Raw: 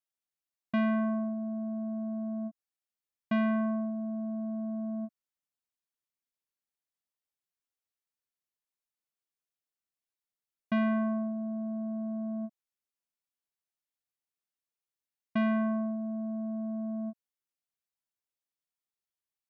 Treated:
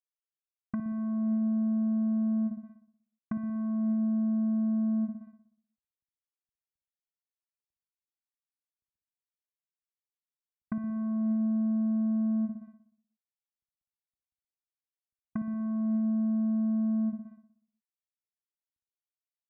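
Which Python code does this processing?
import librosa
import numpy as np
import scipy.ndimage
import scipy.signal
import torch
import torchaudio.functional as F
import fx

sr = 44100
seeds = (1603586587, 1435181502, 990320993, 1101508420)

y = fx.law_mismatch(x, sr, coded='mu')
y = fx.over_compress(y, sr, threshold_db=-32.0, ratio=-1.0)
y = fx.peak_eq(y, sr, hz=62.0, db=11.0, octaves=2.0)
y = fx.fixed_phaser(y, sr, hz=1300.0, stages=4)
y = fx.room_flutter(y, sr, wall_m=10.5, rt60_s=0.7)
y = fx.env_lowpass_down(y, sr, base_hz=620.0, full_db=-38.0)
y = fx.peak_eq(y, sr, hz=770.0, db=3.0, octaves=0.24)
y = fx.env_lowpass(y, sr, base_hz=480.0, full_db=-36.0)
y = F.gain(torch.from_numpy(y), 7.5).numpy()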